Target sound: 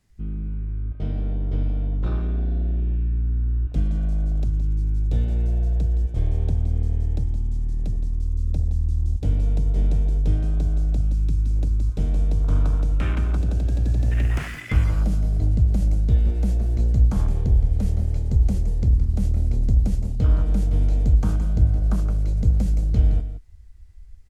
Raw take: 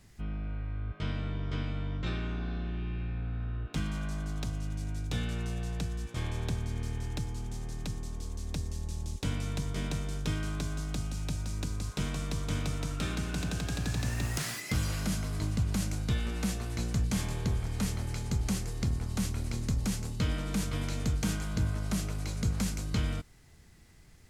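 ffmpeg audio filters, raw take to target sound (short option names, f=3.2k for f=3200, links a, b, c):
-filter_complex "[0:a]afwtdn=0.0112,asplit=2[a][b];[b]aecho=0:1:168:0.266[c];[a][c]amix=inputs=2:normalize=0,asubboost=boost=4.5:cutoff=72,volume=6.5dB"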